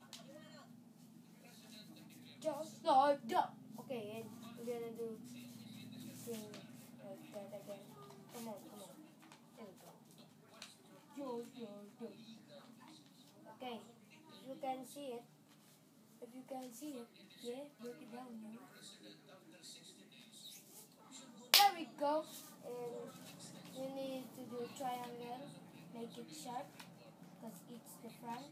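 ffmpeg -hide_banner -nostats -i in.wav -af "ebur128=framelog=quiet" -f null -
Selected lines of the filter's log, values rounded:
Integrated loudness:
  I:         -42.1 LUFS
  Threshold: -54.4 LUFS
Loudness range:
  LRA:        16.9 LU
  Threshold: -64.0 LUFS
  LRA low:   -54.2 LUFS
  LRA high:  -37.3 LUFS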